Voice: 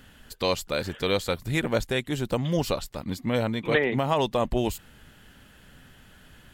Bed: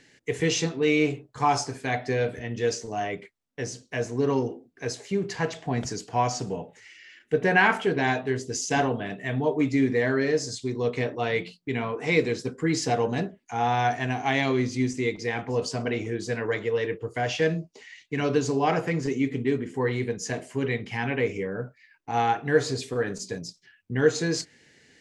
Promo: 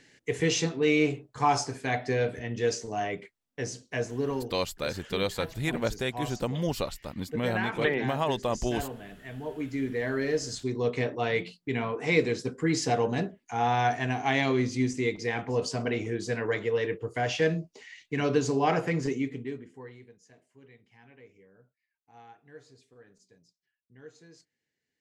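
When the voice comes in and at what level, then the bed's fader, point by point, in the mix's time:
4.10 s, −4.0 dB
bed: 0:03.97 −1.5 dB
0:04.72 −12.5 dB
0:09.38 −12.5 dB
0:10.57 −1.5 dB
0:19.07 −1.5 dB
0:20.23 −28 dB

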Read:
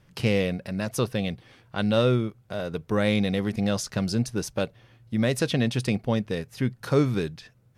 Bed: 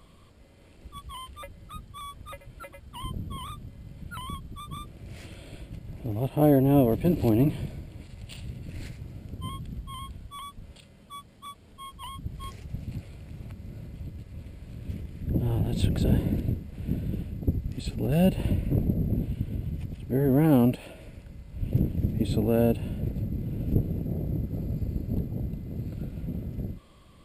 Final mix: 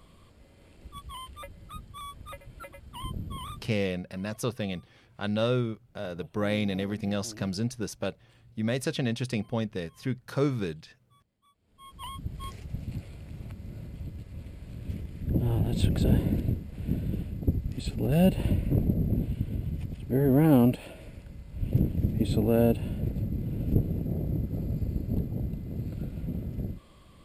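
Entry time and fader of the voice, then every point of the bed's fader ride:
3.45 s, −5.0 dB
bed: 0:03.59 −1 dB
0:03.81 −23.5 dB
0:11.52 −23.5 dB
0:12.01 0 dB

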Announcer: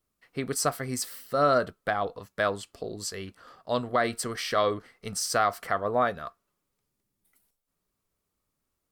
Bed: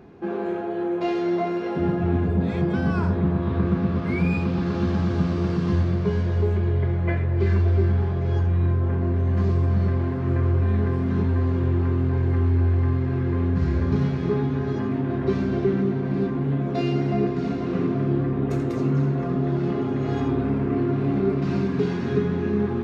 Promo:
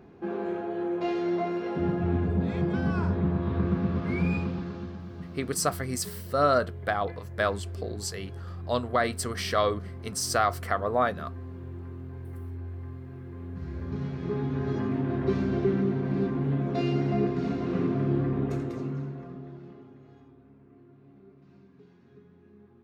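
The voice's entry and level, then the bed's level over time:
5.00 s, 0.0 dB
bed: 0:04.36 −4.5 dB
0:05.01 −18 dB
0:13.34 −18 dB
0:14.70 −3.5 dB
0:18.38 −3.5 dB
0:20.36 −32 dB

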